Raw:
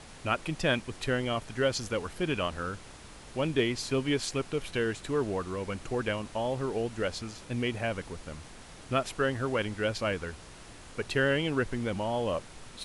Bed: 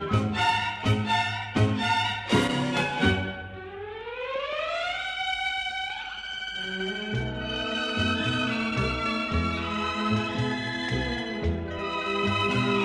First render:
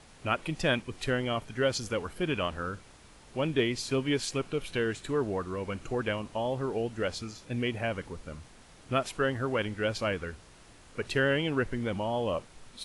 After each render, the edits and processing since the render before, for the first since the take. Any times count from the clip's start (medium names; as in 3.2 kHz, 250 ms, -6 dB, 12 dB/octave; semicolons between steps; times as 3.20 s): noise print and reduce 6 dB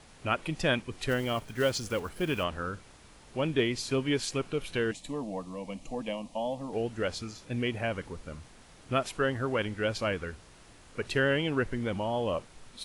1.09–2.44 s: block-companded coder 5-bit; 4.91–6.73 s: static phaser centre 390 Hz, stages 6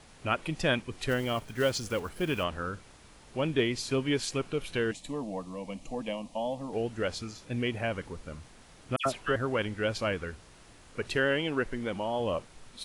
8.96–9.36 s: phase dispersion lows, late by 97 ms, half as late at 2.6 kHz; 11.16–12.20 s: peaking EQ 95 Hz -8 dB 1.6 oct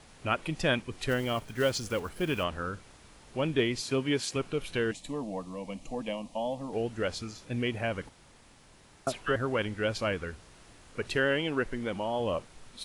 3.81–4.36 s: high-pass 97 Hz; 8.09–9.07 s: room tone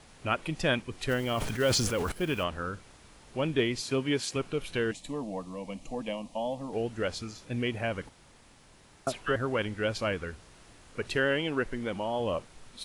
1.22–2.12 s: decay stretcher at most 28 dB/s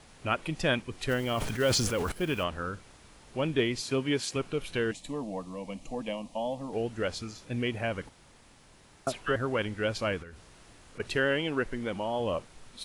10.22–11.00 s: compression 10:1, threshold -42 dBFS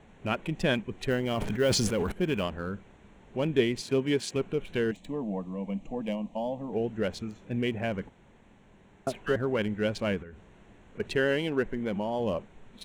local Wiener filter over 9 samples; graphic EQ with 31 bands 200 Hz +9 dB, 400 Hz +4 dB, 1.25 kHz -6 dB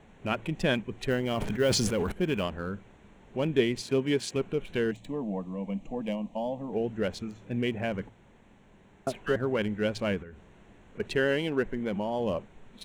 de-hum 55.88 Hz, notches 2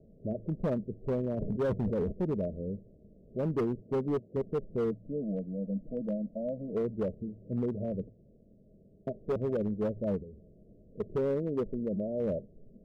rippled Chebyshev low-pass 650 Hz, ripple 3 dB; overload inside the chain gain 25.5 dB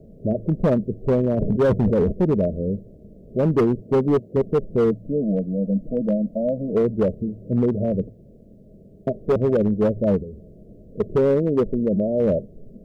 trim +12 dB